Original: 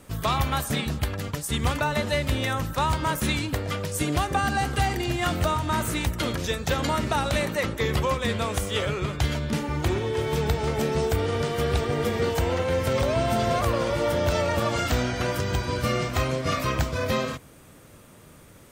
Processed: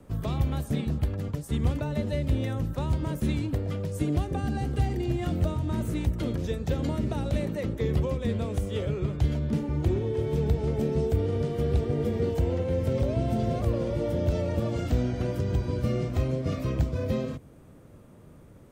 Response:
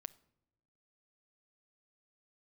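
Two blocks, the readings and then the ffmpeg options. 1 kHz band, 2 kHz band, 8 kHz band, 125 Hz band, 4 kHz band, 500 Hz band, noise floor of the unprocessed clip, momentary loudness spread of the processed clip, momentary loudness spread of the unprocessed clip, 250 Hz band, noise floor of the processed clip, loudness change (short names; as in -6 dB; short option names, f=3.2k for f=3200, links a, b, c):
-13.0 dB, -15.0 dB, -14.5 dB, +1.0 dB, -14.0 dB, -4.0 dB, -50 dBFS, 3 LU, 4 LU, 0.0 dB, -51 dBFS, -3.0 dB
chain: -filter_complex "[0:a]tiltshelf=f=1.1k:g=8,acrossover=split=230|640|1900[a][b][c][d];[c]acompressor=threshold=-43dB:ratio=6[e];[a][b][e][d]amix=inputs=4:normalize=0,volume=-7dB"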